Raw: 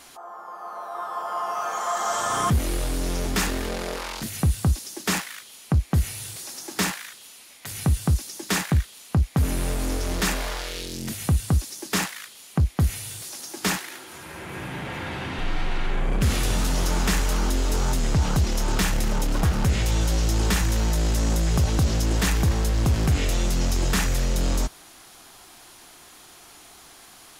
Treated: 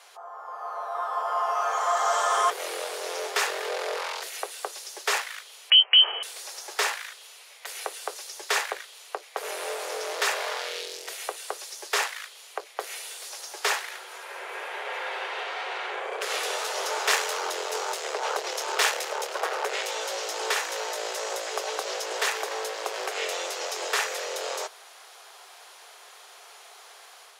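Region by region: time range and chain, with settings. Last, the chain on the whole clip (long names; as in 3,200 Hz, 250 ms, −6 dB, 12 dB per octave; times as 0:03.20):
0:05.70–0:06.23: leveller curve on the samples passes 2 + high-frequency loss of the air 91 metres + voice inversion scrambler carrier 3,100 Hz
0:17.07–0:19.88: leveller curve on the samples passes 1 + multiband upward and downward expander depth 70%
whole clip: Butterworth high-pass 410 Hz 72 dB per octave; high-shelf EQ 7,700 Hz −10.5 dB; automatic gain control gain up to 4 dB; level −2 dB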